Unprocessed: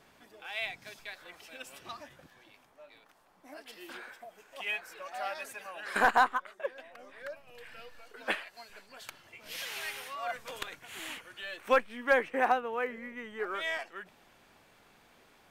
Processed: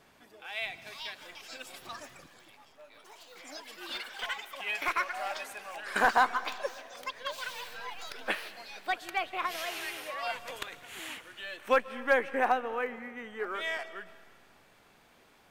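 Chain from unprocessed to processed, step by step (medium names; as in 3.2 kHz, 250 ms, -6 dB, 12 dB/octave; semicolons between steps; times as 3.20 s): ever faster or slower copies 606 ms, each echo +6 st, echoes 3, each echo -6 dB; algorithmic reverb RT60 1.8 s, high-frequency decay 0.85×, pre-delay 100 ms, DRR 16 dB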